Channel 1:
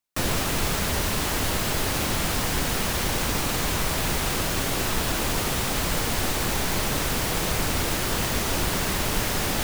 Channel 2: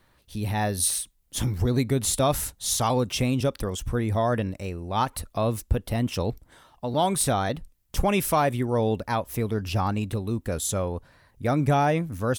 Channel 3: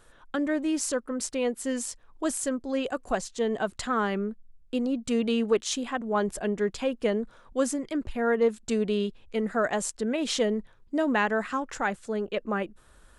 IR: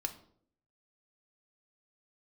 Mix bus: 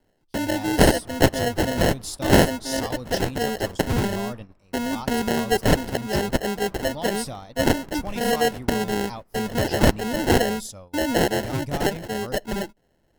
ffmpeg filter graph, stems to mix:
-filter_complex "[0:a]flanger=delay=18:depth=5:speed=0.39,lowpass=1.2k,adelay=850,volume=-17dB[a];[1:a]acompressor=threshold=-26dB:ratio=1.5,equalizer=f=400:t=o:w=0.33:g=-7,equalizer=f=1.6k:t=o:w=0.33:g=-10,equalizer=f=5k:t=o:w=0.33:g=12,volume=-8dB[b];[2:a]crystalizer=i=6:c=0,acrusher=samples=37:mix=1:aa=0.000001,volume=0dB,asplit=2[c][d];[d]volume=-19.5dB[e];[3:a]atrim=start_sample=2205[f];[e][f]afir=irnorm=-1:irlink=0[g];[a][b][c][g]amix=inputs=4:normalize=0,agate=range=-18dB:threshold=-34dB:ratio=16:detection=peak"

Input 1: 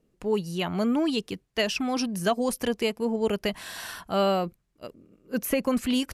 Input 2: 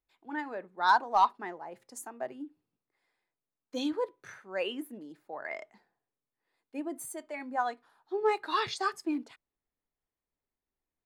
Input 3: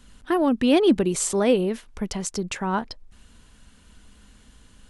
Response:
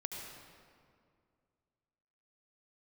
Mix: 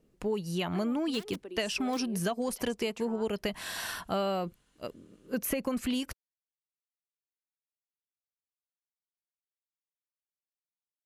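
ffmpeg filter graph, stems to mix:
-filter_complex "[0:a]volume=1dB[a];[2:a]aeval=exprs='(mod(3.16*val(0)+1,2)-1)/3.16':c=same,adelay=450,volume=-14.5dB,highpass=f=270:w=0.5412,highpass=f=270:w=1.3066,acompressor=threshold=-38dB:ratio=6,volume=0dB[b];[a][b]amix=inputs=2:normalize=0,acompressor=threshold=-28dB:ratio=6"

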